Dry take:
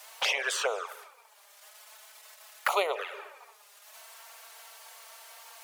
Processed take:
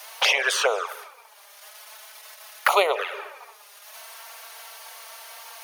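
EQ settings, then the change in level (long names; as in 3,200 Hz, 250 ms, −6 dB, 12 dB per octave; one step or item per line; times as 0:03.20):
low-shelf EQ 180 Hz −3.5 dB
notch filter 7,600 Hz, Q 5.2
+8.0 dB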